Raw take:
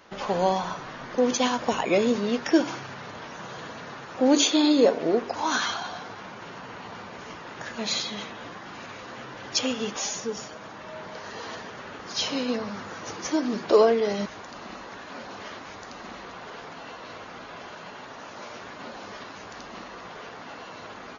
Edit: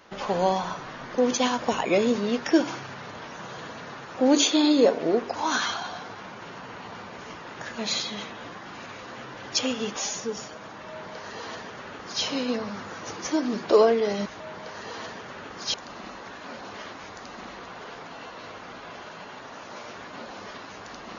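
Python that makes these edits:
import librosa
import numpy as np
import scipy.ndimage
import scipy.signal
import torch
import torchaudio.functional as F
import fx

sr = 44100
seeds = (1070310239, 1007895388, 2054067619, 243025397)

y = fx.edit(x, sr, fx.duplicate(start_s=10.89, length_s=1.34, to_s=14.4), tone=tone)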